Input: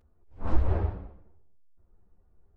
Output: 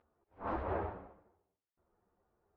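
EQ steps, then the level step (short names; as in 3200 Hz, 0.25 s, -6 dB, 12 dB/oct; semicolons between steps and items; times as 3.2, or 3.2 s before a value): band-pass 1100 Hz, Q 0.64; air absorption 140 m; +2.5 dB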